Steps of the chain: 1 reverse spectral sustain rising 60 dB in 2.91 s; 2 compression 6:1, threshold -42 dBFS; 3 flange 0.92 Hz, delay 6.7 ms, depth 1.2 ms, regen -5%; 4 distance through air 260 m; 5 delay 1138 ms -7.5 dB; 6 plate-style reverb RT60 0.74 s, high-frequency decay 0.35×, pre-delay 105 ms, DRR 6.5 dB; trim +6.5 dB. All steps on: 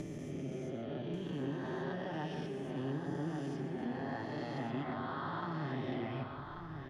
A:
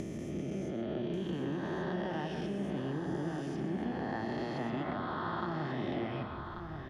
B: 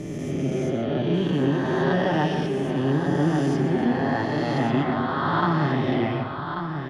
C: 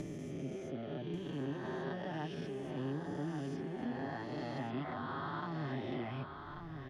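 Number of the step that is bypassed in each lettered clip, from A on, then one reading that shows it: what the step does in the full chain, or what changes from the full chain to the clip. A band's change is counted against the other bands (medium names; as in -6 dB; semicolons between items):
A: 3, loudness change +3.0 LU; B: 2, mean gain reduction 14.5 dB; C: 6, echo-to-direct -3.5 dB to -7.5 dB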